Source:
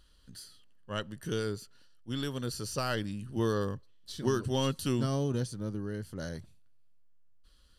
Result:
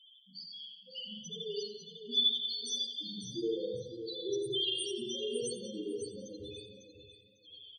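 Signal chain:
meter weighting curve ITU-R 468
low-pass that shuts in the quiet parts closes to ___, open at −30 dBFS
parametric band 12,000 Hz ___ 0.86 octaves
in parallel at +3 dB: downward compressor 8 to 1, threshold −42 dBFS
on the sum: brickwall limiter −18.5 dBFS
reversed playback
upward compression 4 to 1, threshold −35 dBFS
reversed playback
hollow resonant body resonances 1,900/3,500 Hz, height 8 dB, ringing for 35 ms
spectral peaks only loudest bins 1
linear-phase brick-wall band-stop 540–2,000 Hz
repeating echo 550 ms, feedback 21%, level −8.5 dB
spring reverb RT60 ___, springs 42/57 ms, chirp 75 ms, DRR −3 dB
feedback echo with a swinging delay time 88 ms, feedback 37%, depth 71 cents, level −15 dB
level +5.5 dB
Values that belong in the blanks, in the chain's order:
2,100 Hz, +8.5 dB, 1 s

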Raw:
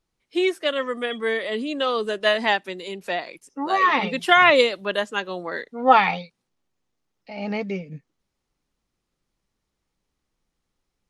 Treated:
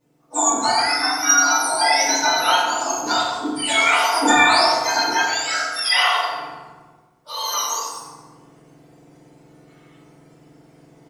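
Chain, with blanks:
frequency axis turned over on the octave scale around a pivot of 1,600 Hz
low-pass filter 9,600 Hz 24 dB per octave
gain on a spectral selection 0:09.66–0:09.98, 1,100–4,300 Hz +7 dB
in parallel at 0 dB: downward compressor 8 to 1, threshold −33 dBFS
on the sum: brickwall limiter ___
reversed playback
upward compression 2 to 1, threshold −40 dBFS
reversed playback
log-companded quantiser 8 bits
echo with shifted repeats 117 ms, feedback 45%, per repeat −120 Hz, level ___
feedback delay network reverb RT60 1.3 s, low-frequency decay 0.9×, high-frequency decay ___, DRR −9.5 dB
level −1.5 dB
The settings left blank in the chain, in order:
−14.5 dBFS, −15.5 dB, 0.55×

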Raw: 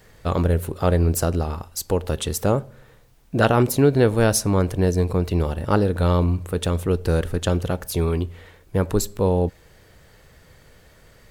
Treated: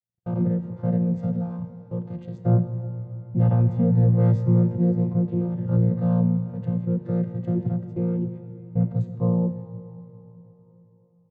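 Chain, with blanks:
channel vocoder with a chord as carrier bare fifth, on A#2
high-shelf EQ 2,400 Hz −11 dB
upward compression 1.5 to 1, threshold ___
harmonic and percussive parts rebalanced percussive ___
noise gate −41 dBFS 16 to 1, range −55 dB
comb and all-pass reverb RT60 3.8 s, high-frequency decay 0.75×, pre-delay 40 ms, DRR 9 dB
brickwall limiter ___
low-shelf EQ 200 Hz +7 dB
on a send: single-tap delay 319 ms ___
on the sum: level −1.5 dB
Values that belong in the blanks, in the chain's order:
−27 dBFS, −15 dB, −13 dBFS, −23.5 dB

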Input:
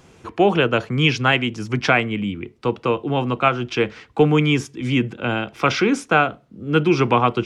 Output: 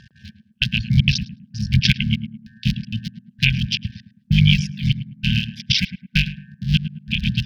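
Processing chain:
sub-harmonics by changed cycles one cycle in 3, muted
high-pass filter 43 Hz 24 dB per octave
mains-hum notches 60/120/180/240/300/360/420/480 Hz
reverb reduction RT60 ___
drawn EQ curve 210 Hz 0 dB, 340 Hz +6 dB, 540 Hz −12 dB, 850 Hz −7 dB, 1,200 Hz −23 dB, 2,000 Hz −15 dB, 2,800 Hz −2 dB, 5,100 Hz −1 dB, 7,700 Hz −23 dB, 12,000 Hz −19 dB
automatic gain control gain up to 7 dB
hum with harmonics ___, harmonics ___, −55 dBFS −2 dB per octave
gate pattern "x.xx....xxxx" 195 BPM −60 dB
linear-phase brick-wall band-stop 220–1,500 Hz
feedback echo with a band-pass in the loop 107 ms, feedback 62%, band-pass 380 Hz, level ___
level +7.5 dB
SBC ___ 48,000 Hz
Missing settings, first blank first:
0.67 s, 120 Hz, 15, −5 dB, 192 kbit/s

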